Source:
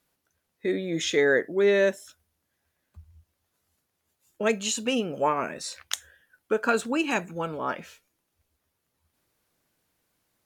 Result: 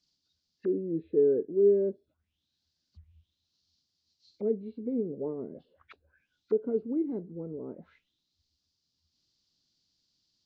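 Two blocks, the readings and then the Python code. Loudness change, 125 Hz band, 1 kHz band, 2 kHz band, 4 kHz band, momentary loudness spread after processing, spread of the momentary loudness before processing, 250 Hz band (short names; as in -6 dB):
-3.5 dB, -4.5 dB, -27.0 dB, under -30 dB, under -30 dB, 16 LU, 12 LU, -2.5 dB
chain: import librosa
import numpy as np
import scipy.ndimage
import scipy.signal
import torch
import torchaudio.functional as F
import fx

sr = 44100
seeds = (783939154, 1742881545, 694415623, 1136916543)

y = fx.freq_compress(x, sr, knee_hz=1400.0, ratio=1.5)
y = fx.band_shelf(y, sr, hz=1000.0, db=-11.5, octaves=2.9)
y = fx.envelope_lowpass(y, sr, base_hz=430.0, top_hz=4700.0, q=5.8, full_db=-35.0, direction='down')
y = F.gain(torch.from_numpy(y), -6.0).numpy()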